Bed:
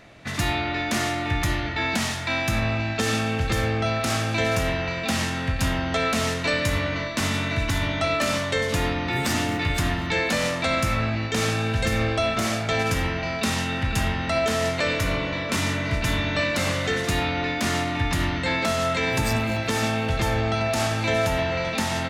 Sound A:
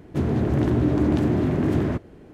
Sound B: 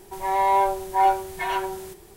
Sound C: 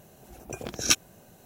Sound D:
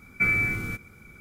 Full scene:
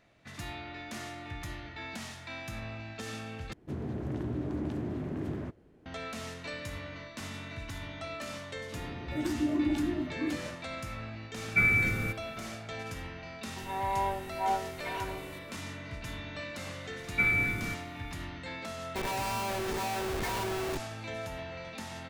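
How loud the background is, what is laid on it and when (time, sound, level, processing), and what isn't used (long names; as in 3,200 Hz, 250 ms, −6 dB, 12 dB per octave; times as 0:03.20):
bed −16.5 dB
0:03.53: overwrite with A −14 dB
0:08.58: mix in A −5.5 dB + noise reduction from a noise print of the clip's start 18 dB
0:11.36: mix in D −1.5 dB
0:13.45: mix in B −11.5 dB
0:16.98: mix in D −3.5 dB
0:18.84: mix in B −10 dB + comparator with hysteresis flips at −36 dBFS
not used: C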